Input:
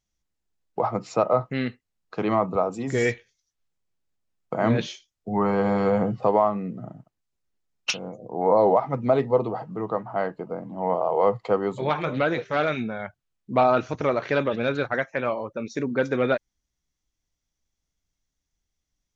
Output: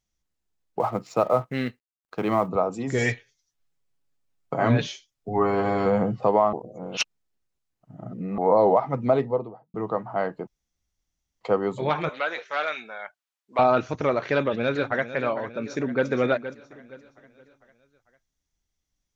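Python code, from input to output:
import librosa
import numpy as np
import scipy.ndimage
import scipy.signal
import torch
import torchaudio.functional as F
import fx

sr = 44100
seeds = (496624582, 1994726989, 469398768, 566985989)

y = fx.law_mismatch(x, sr, coded='A', at=(0.79, 2.47), fade=0.02)
y = fx.comb(y, sr, ms=7.2, depth=0.65, at=(2.98, 5.86))
y = fx.studio_fade_out(y, sr, start_s=9.06, length_s=0.68)
y = fx.highpass(y, sr, hz=790.0, slope=12, at=(12.09, 13.59))
y = fx.echo_throw(y, sr, start_s=14.26, length_s=0.81, ms=450, feedback_pct=60, wet_db=-13.0)
y = fx.echo_throw(y, sr, start_s=15.57, length_s=0.5, ms=470, feedback_pct=30, wet_db=-11.0)
y = fx.edit(y, sr, fx.reverse_span(start_s=6.53, length_s=1.85),
    fx.room_tone_fill(start_s=10.47, length_s=0.94), tone=tone)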